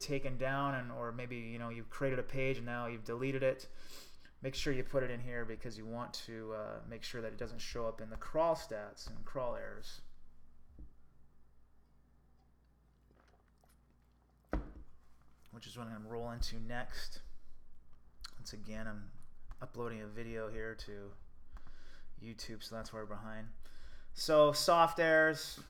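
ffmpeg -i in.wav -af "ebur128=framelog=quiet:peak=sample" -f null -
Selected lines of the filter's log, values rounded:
Integrated loudness:
  I:         -37.8 LUFS
  Threshold: -49.5 LUFS
Loudness range:
  LRA:        13.6 LU
  Threshold: -62.3 LUFS
  LRA low:   -50.7 LUFS
  LRA high:  -37.1 LUFS
Sample peak:
  Peak:      -15.0 dBFS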